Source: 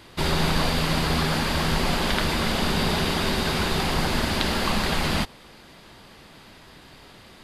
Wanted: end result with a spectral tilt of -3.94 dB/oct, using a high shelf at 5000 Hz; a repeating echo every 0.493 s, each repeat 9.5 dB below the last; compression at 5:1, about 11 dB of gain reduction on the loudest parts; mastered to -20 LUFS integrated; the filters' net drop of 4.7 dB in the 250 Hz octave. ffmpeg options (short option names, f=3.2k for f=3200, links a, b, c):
-af "equalizer=f=250:t=o:g=-7,highshelf=f=5k:g=4.5,acompressor=threshold=-32dB:ratio=5,aecho=1:1:493|986|1479|1972:0.335|0.111|0.0365|0.012,volume=13.5dB"